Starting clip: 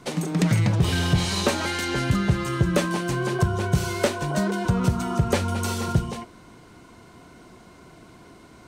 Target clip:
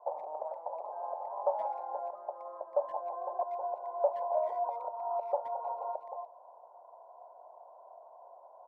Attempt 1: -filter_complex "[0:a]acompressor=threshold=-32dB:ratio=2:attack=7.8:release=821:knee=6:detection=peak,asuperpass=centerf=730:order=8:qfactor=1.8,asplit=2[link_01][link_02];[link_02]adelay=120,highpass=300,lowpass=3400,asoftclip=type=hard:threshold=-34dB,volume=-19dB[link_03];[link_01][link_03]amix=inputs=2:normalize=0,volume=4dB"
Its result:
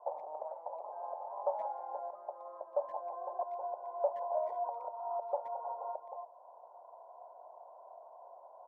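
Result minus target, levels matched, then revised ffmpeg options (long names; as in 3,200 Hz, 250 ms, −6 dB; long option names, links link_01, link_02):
downward compressor: peak gain reduction +3.5 dB
-filter_complex "[0:a]acompressor=threshold=-25dB:ratio=2:attack=7.8:release=821:knee=6:detection=peak,asuperpass=centerf=730:order=8:qfactor=1.8,asplit=2[link_01][link_02];[link_02]adelay=120,highpass=300,lowpass=3400,asoftclip=type=hard:threshold=-34dB,volume=-19dB[link_03];[link_01][link_03]amix=inputs=2:normalize=0,volume=4dB"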